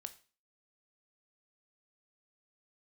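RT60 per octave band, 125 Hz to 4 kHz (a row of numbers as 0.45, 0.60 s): 0.40, 0.40, 0.35, 0.35, 0.35, 0.40 s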